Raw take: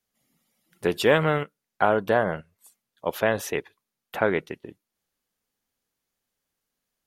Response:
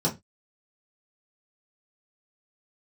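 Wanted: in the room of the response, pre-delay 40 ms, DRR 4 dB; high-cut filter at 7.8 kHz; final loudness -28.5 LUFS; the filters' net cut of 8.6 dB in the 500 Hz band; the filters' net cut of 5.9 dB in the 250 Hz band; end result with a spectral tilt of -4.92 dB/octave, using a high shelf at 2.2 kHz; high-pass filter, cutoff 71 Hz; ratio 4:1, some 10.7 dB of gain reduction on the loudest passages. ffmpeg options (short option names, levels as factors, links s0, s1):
-filter_complex "[0:a]highpass=71,lowpass=7800,equalizer=f=250:t=o:g=-5.5,equalizer=f=500:t=o:g=-9,highshelf=f=2200:g=-5,acompressor=threshold=0.0224:ratio=4,asplit=2[s0][s1];[1:a]atrim=start_sample=2205,adelay=40[s2];[s1][s2]afir=irnorm=-1:irlink=0,volume=0.188[s3];[s0][s3]amix=inputs=2:normalize=0,volume=2.37"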